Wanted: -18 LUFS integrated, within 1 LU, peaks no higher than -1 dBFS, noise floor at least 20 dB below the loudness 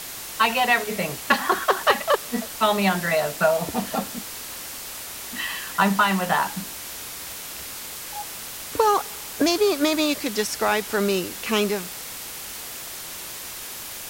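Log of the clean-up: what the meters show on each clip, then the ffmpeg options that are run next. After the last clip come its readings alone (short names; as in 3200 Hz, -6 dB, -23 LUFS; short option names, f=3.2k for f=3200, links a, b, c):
noise floor -36 dBFS; noise floor target -44 dBFS; loudness -24.0 LUFS; peak -6.5 dBFS; loudness target -18.0 LUFS
-> -af "afftdn=nr=8:nf=-36"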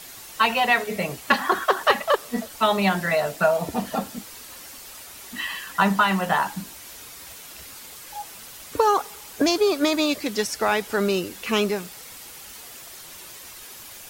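noise floor -42 dBFS; noise floor target -43 dBFS
-> -af "afftdn=nr=6:nf=-42"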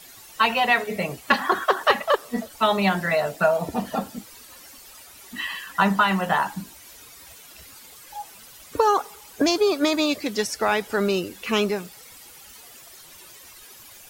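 noise floor -47 dBFS; loudness -23.0 LUFS; peak -6.5 dBFS; loudness target -18.0 LUFS
-> -af "volume=5dB"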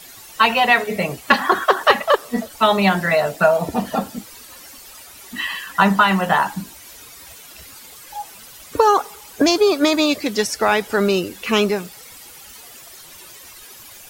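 loudness -18.0 LUFS; peak -1.5 dBFS; noise floor -42 dBFS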